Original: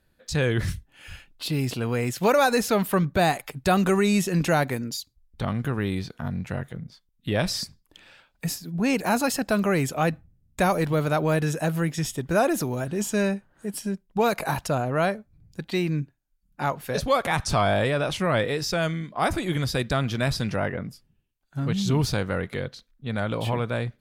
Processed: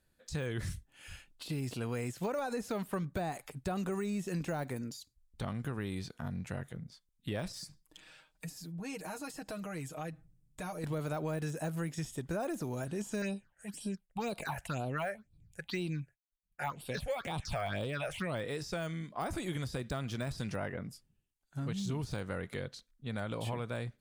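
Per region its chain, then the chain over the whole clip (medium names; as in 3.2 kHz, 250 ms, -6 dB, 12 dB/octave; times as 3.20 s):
7.52–10.84 s: comb 6.4 ms, depth 74% + compression 2.5:1, threshold -36 dBFS
13.22–18.35 s: expander -58 dBFS + peaking EQ 2.9 kHz +8 dB 2.9 oct + phase shifter stages 6, 2 Hz, lowest notch 260–1900 Hz
whole clip: de-esser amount 90%; peaking EQ 8.3 kHz +8 dB 1.1 oct; compression 4:1, threshold -25 dBFS; trim -8 dB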